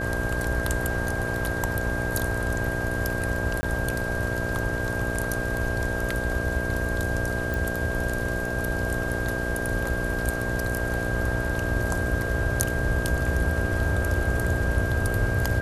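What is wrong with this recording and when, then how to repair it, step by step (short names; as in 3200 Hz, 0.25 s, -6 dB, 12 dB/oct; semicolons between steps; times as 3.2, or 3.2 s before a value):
buzz 60 Hz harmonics 11 -31 dBFS
tone 1600 Hz -30 dBFS
3.61–3.63 gap 20 ms
7.54 pop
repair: de-click; de-hum 60 Hz, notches 11; notch 1600 Hz, Q 30; interpolate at 3.61, 20 ms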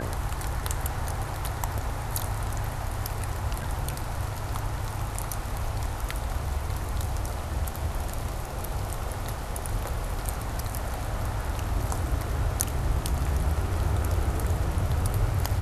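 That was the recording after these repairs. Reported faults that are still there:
none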